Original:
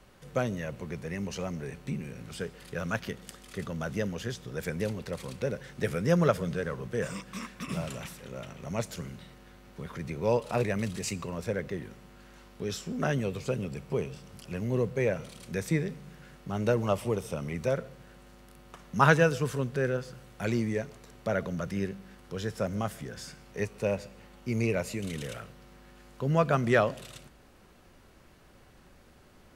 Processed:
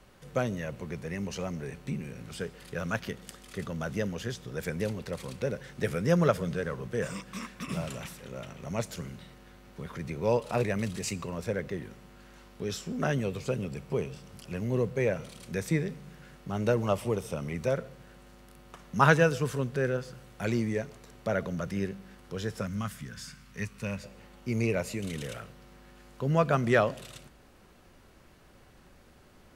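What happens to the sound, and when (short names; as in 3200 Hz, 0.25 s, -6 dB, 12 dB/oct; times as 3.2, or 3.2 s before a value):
22.61–24.04 band shelf 520 Hz -11.5 dB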